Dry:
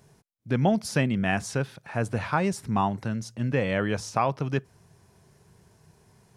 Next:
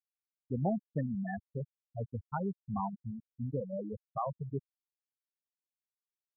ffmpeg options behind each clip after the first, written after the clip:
ffmpeg -i in.wav -af "afftfilt=real='re*gte(hypot(re,im),0.282)':imag='im*gte(hypot(re,im),0.282)':win_size=1024:overlap=0.75,volume=-8.5dB" out.wav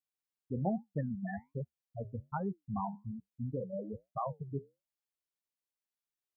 ffmpeg -i in.wav -af "flanger=delay=6.2:depth=7.7:regen=-72:speed=1.2:shape=triangular,volume=3dB" out.wav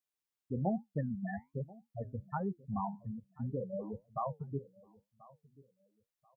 ffmpeg -i in.wav -af "aecho=1:1:1035|2070:0.0794|0.0199" out.wav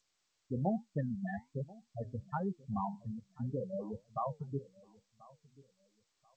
ffmpeg -i in.wav -ar 16000 -c:a g722 out.g722

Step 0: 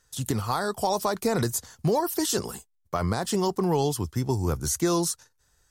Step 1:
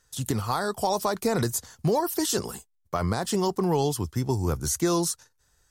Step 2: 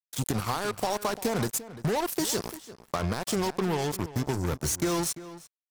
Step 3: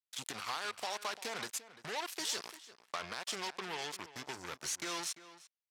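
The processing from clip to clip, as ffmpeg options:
ffmpeg -i in.wav -af anull out.wav
ffmpeg -i in.wav -filter_complex "[0:a]acompressor=threshold=-27dB:ratio=3,acrusher=bits=4:mix=0:aa=0.5,asplit=2[link_01][link_02];[link_02]adelay=344,volume=-15dB,highshelf=frequency=4000:gain=-7.74[link_03];[link_01][link_03]amix=inputs=2:normalize=0,volume=1dB" out.wav
ffmpeg -i in.wav -af "bandpass=frequency=2900:width_type=q:width=0.77:csg=0,volume=-2dB" out.wav

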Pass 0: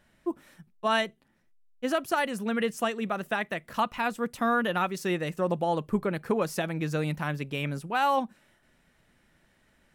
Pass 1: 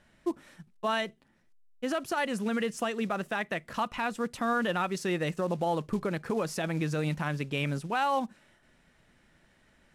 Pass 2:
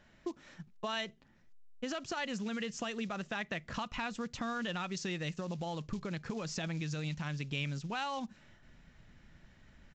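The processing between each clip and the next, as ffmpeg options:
ffmpeg -i in.wav -af "acrusher=bits=6:mode=log:mix=0:aa=0.000001,lowpass=9600,alimiter=limit=-21.5dB:level=0:latency=1:release=80,volume=1.5dB" out.wav
ffmpeg -i in.wav -filter_complex "[0:a]asubboost=boost=2.5:cutoff=220,acrossover=split=2600[link_01][link_02];[link_01]acompressor=threshold=-36dB:ratio=6[link_03];[link_03][link_02]amix=inputs=2:normalize=0,aresample=16000,aresample=44100" out.wav

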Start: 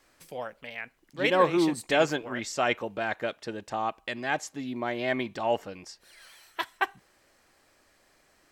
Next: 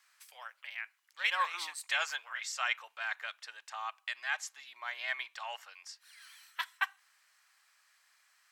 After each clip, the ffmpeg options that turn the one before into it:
ffmpeg -i in.wav -af "highpass=frequency=1100:width=0.5412,highpass=frequency=1100:width=1.3066,volume=-2.5dB" out.wav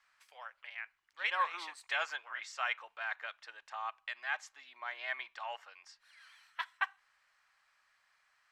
ffmpeg -i in.wav -af "aemphasis=mode=reproduction:type=riaa" out.wav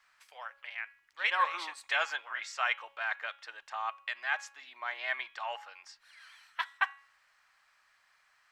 ffmpeg -i in.wav -af "bandreject=frequency=277.6:width_type=h:width=4,bandreject=frequency=555.2:width_type=h:width=4,bandreject=frequency=832.8:width_type=h:width=4,bandreject=frequency=1110.4:width_type=h:width=4,bandreject=frequency=1388:width_type=h:width=4,bandreject=frequency=1665.6:width_type=h:width=4,bandreject=frequency=1943.2:width_type=h:width=4,bandreject=frequency=2220.8:width_type=h:width=4,bandreject=frequency=2498.4:width_type=h:width=4,bandreject=frequency=2776:width_type=h:width=4,bandreject=frequency=3053.6:width_type=h:width=4,bandreject=frequency=3331.2:width_type=h:width=4,bandreject=frequency=3608.8:width_type=h:width=4,bandreject=frequency=3886.4:width_type=h:width=4,volume=4.5dB" out.wav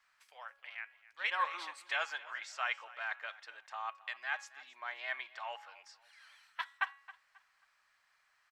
ffmpeg -i in.wav -af "aecho=1:1:269|538|807:0.112|0.0337|0.0101,volume=-5dB" out.wav

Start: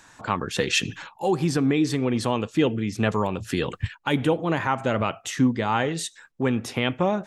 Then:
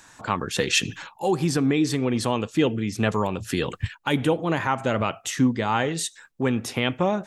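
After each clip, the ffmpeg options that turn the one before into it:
ffmpeg -i in.wav -af "highshelf=frequency=6100:gain=5.5" out.wav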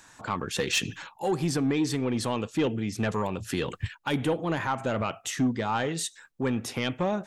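ffmpeg -i in.wav -af "asoftclip=type=tanh:threshold=-14.5dB,volume=-3dB" out.wav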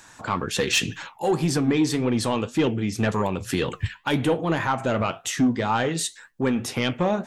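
ffmpeg -i in.wav -af "flanger=delay=7.8:depth=5.5:regen=-70:speed=1.9:shape=triangular,volume=9dB" out.wav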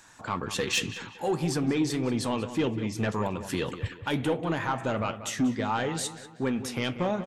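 ffmpeg -i in.wav -filter_complex "[0:a]asplit=2[link_01][link_02];[link_02]adelay=188,lowpass=frequency=3600:poles=1,volume=-12dB,asplit=2[link_03][link_04];[link_04]adelay=188,lowpass=frequency=3600:poles=1,volume=0.43,asplit=2[link_05][link_06];[link_06]adelay=188,lowpass=frequency=3600:poles=1,volume=0.43,asplit=2[link_07][link_08];[link_08]adelay=188,lowpass=frequency=3600:poles=1,volume=0.43[link_09];[link_01][link_03][link_05][link_07][link_09]amix=inputs=5:normalize=0,volume=-5.5dB" out.wav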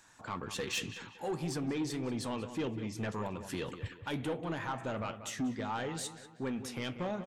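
ffmpeg -i in.wav -af "asoftclip=type=tanh:threshold=-20dB,volume=-7dB" out.wav

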